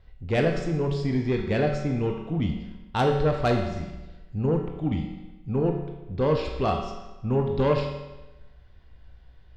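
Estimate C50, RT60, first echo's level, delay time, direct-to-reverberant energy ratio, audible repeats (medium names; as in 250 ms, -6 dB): 5.0 dB, 1.1 s, no echo, no echo, 2.0 dB, no echo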